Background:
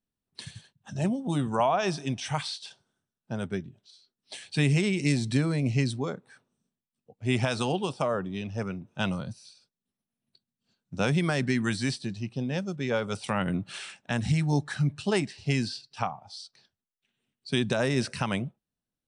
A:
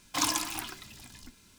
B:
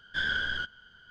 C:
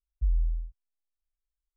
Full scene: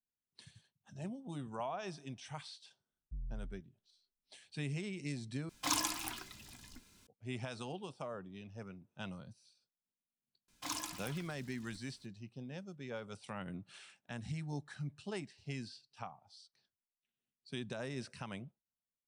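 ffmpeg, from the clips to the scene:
ffmpeg -i bed.wav -i cue0.wav -i cue1.wav -i cue2.wav -filter_complex "[1:a]asplit=2[link_01][link_02];[0:a]volume=-16dB[link_03];[3:a]asoftclip=type=tanh:threshold=-26dB[link_04];[link_03]asplit=2[link_05][link_06];[link_05]atrim=end=5.494[link_07];[link_01]atrim=end=1.58,asetpts=PTS-STARTPTS,volume=-5.5dB[link_08];[link_06]atrim=start=7.066[link_09];[link_04]atrim=end=1.76,asetpts=PTS-STARTPTS,volume=-12.5dB,afade=type=in:duration=0.004:curve=hsin,afade=type=out:start_time=1.756:duration=0.004:curve=hsin,adelay=2900[link_10];[link_02]atrim=end=1.58,asetpts=PTS-STARTPTS,volume=-12.5dB,afade=type=in:duration=0.004:curve=hsin,afade=type=out:start_time=1.576:duration=0.004:curve=hsin,adelay=10480[link_11];[link_07][link_08]acrossfade=duration=0.004:curve1=hsin:curve2=hsin[link_12];[link_12][link_09]acrossfade=duration=0.004:curve1=hsin:curve2=hsin[link_13];[link_13][link_10][link_11]amix=inputs=3:normalize=0" out.wav

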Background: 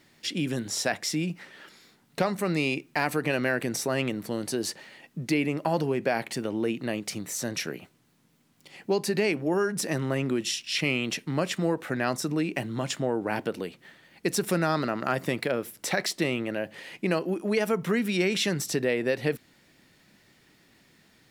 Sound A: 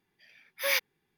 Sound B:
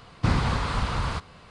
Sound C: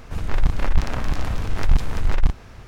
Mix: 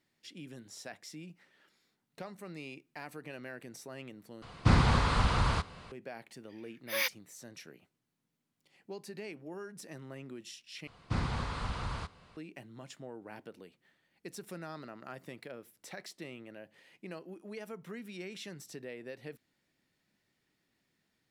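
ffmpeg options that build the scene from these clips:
ffmpeg -i bed.wav -i cue0.wav -i cue1.wav -filter_complex "[2:a]asplit=2[link_01][link_02];[0:a]volume=-18.5dB,asplit=3[link_03][link_04][link_05];[link_03]atrim=end=4.424[link_06];[link_01]atrim=end=1.5,asetpts=PTS-STARTPTS,volume=-1dB[link_07];[link_04]atrim=start=5.916:end=10.874[link_08];[link_02]atrim=end=1.5,asetpts=PTS-STARTPTS,volume=-10dB[link_09];[link_05]atrim=start=12.366[link_10];[1:a]atrim=end=1.17,asetpts=PTS-STARTPTS,volume=-4.5dB,afade=type=in:duration=0.004:curve=hsin,afade=type=out:start_time=1.166:duration=0.004:curve=hsin,adelay=6290[link_11];[link_06][link_07]acrossfade=duration=0.004:curve1=hsin:curve2=hsin[link_12];[link_12][link_08]acrossfade=duration=0.004:curve1=hsin:curve2=hsin[link_13];[link_13][link_09]acrossfade=duration=0.004:curve1=hsin:curve2=hsin[link_14];[link_14][link_10]acrossfade=duration=0.004:curve1=hsin:curve2=hsin[link_15];[link_15][link_11]amix=inputs=2:normalize=0" out.wav

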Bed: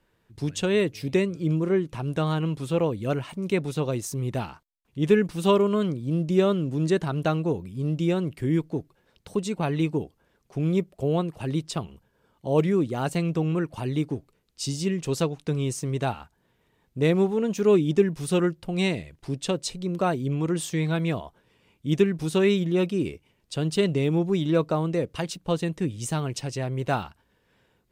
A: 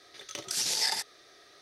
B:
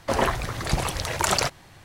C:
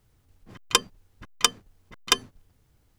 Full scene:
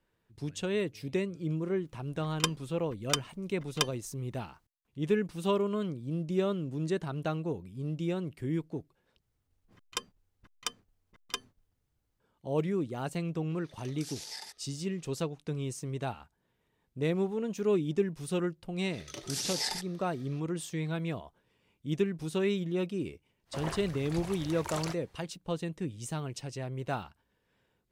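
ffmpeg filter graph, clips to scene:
ffmpeg -i bed.wav -i cue0.wav -i cue1.wav -i cue2.wav -filter_complex "[3:a]asplit=2[link_01][link_02];[1:a]asplit=2[link_03][link_04];[0:a]volume=-8.5dB[link_05];[link_04]lowshelf=frequency=370:gain=11[link_06];[link_05]asplit=2[link_07][link_08];[link_07]atrim=end=9.224[link_09];[link_02]atrim=end=2.98,asetpts=PTS-STARTPTS,volume=-15dB[link_10];[link_08]atrim=start=12.196[link_11];[link_01]atrim=end=2.98,asetpts=PTS-STARTPTS,volume=-9dB,afade=type=in:duration=0.004:curve=hsin,afade=type=out:start_time=2.976:duration=0.004:curve=hsin,adelay=1690[link_12];[link_03]atrim=end=1.61,asetpts=PTS-STARTPTS,volume=-14.5dB,afade=type=in:duration=0.004:curve=hsin,afade=type=out:start_time=1.606:duration=0.004:curve=hsin,adelay=13500[link_13];[link_06]atrim=end=1.61,asetpts=PTS-STARTPTS,volume=-5.5dB,afade=type=in:duration=0.004:curve=hsin,afade=type=out:start_time=1.606:duration=0.004:curve=hsin,adelay=18790[link_14];[2:a]atrim=end=1.84,asetpts=PTS-STARTPTS,volume=-16dB,afade=type=in:duration=0.05,afade=type=out:start_time=1.79:duration=0.05,adelay=23450[link_15];[link_09][link_10]acrossfade=duration=0.004:curve1=hsin:curve2=hsin[link_16];[link_16][link_11]acrossfade=duration=0.004:curve1=hsin:curve2=hsin[link_17];[link_17][link_12][link_13][link_14][link_15]amix=inputs=5:normalize=0" out.wav

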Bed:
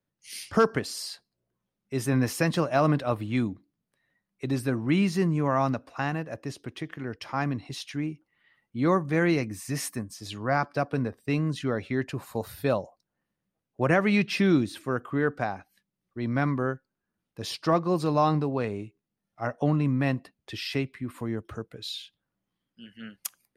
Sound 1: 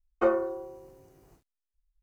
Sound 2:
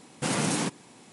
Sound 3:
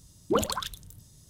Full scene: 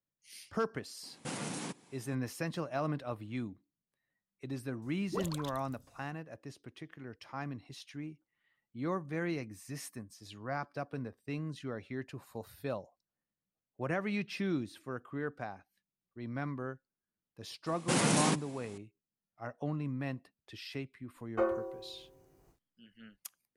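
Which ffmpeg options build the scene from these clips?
ffmpeg -i bed.wav -i cue0.wav -i cue1.wav -i cue2.wav -filter_complex "[2:a]asplit=2[link_01][link_02];[0:a]volume=-12dB[link_03];[link_01]alimiter=limit=-19.5dB:level=0:latency=1:release=487,atrim=end=1.12,asetpts=PTS-STARTPTS,volume=-8.5dB,afade=type=in:duration=0.004:curve=hsin,afade=type=out:start_time=1.116:duration=0.004:curve=hsin,adelay=1030[link_04];[3:a]atrim=end=1.29,asetpts=PTS-STARTPTS,volume=-12.5dB,afade=type=in:duration=0.004:curve=hsin,afade=type=out:start_time=1.286:duration=0.004:curve=hsin,adelay=4820[link_05];[link_02]atrim=end=1.12,asetpts=PTS-STARTPTS,volume=-1.5dB,afade=type=in:duration=0.004:curve=hsin,afade=type=out:start_time=1.116:duration=0.004:curve=hsin,adelay=17660[link_06];[1:a]atrim=end=2.02,asetpts=PTS-STARTPTS,volume=-6.5dB,afade=type=in:duration=0.004:curve=hsin,afade=type=out:start_time=2.016:duration=0.004:curve=hsin,adelay=933156S[link_07];[link_03][link_04][link_05][link_06][link_07]amix=inputs=5:normalize=0" out.wav

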